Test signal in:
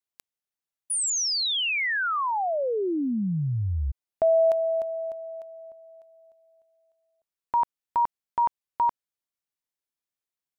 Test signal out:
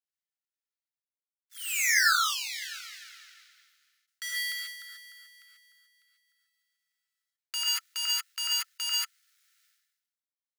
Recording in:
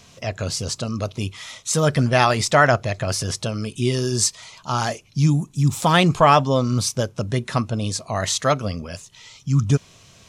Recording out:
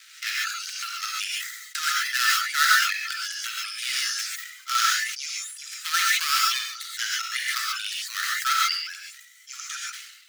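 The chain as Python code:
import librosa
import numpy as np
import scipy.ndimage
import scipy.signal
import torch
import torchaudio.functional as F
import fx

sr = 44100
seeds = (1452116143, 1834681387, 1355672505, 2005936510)

y = fx.dead_time(x, sr, dead_ms=0.13)
y = fx.dereverb_blind(y, sr, rt60_s=1.5)
y = fx.rider(y, sr, range_db=4, speed_s=0.5)
y = scipy.signal.sosfilt(scipy.signal.cheby1(6, 3, 1300.0, 'highpass', fs=sr, output='sos'), y)
y = fx.rev_gated(y, sr, seeds[0], gate_ms=160, shape='rising', drr_db=-3.5)
y = fx.sustainer(y, sr, db_per_s=58.0)
y = y * 10.0 ** (2.5 / 20.0)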